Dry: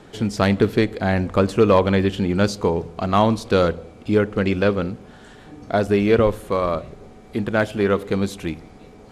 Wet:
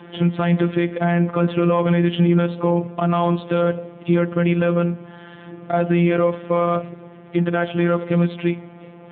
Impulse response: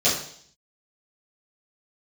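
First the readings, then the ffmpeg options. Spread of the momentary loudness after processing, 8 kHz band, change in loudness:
7 LU, below −40 dB, +0.5 dB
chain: -af "afftfilt=real='hypot(re,im)*cos(PI*b)':imag='0':win_size=1024:overlap=0.75,alimiter=level_in=13.5dB:limit=-1dB:release=50:level=0:latency=1,volume=-4.5dB" -ar 8000 -c:a libopencore_amrnb -b:a 10200

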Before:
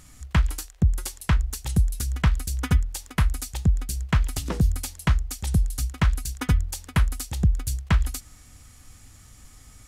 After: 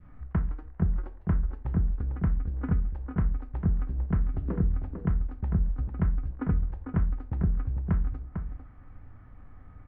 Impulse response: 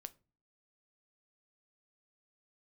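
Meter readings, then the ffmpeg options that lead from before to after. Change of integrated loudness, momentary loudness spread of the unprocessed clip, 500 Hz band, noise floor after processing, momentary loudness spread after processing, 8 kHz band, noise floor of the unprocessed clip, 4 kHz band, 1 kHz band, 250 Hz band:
−5.0 dB, 4 LU, −2.5 dB, −49 dBFS, 4 LU, below −40 dB, −51 dBFS, below −30 dB, −9.5 dB, −1.5 dB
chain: -filter_complex "[0:a]asplit=2[link_01][link_02];[link_02]aeval=exprs='val(0)*gte(abs(val(0)),0.0316)':channel_layout=same,volume=-11dB[link_03];[link_01][link_03]amix=inputs=2:normalize=0,acrossover=split=460|970[link_04][link_05][link_06];[link_04]acompressor=threshold=-25dB:ratio=4[link_07];[link_05]acompressor=threshold=-51dB:ratio=4[link_08];[link_06]acompressor=threshold=-42dB:ratio=4[link_09];[link_07][link_08][link_09]amix=inputs=3:normalize=0,asplit=2[link_10][link_11];[link_11]adelay=449,volume=-7dB,highshelf=frequency=4000:gain=-10.1[link_12];[link_10][link_12]amix=inputs=2:normalize=0[link_13];[1:a]atrim=start_sample=2205,afade=type=out:start_time=0.15:duration=0.01,atrim=end_sample=7056,asetrate=28665,aresample=44100[link_14];[link_13][link_14]afir=irnorm=-1:irlink=0,adynamicequalizer=threshold=0.00224:dfrequency=910:dqfactor=0.85:tfrequency=910:tqfactor=0.85:attack=5:release=100:ratio=0.375:range=1.5:mode=cutabove:tftype=bell,lowpass=frequency=1600:width=0.5412,lowpass=frequency=1600:width=1.3066,volume=3.5dB"

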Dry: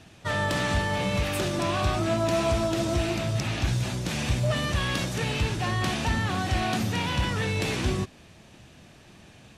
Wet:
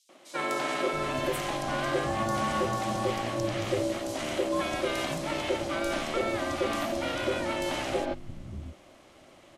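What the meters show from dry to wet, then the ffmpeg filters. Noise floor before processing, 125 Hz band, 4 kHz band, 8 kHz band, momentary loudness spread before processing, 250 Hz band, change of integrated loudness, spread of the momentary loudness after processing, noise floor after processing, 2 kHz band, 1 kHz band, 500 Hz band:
−52 dBFS, −12.0 dB, −4.5 dB, −4.0 dB, 3 LU, −3.5 dB, −3.5 dB, 4 LU, −55 dBFS, −3.5 dB, −0.5 dB, +0.5 dB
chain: -filter_complex "[0:a]aeval=exprs='val(0)*sin(2*PI*450*n/s)':channel_layout=same,acrossover=split=200|4500[link_01][link_02][link_03];[link_02]adelay=90[link_04];[link_01]adelay=670[link_05];[link_05][link_04][link_03]amix=inputs=3:normalize=0"

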